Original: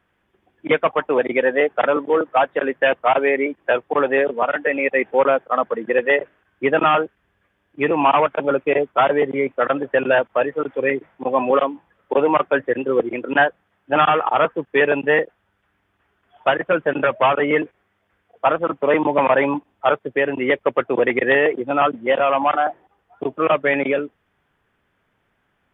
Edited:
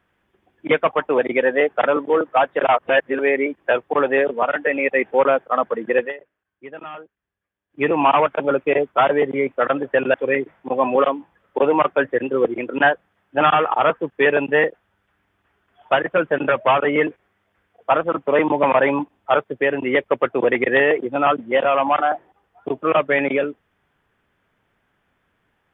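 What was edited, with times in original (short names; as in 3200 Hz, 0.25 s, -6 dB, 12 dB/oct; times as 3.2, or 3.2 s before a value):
2.63–3.19 reverse
6–7.82 dip -19 dB, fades 0.13 s
10.14–10.69 cut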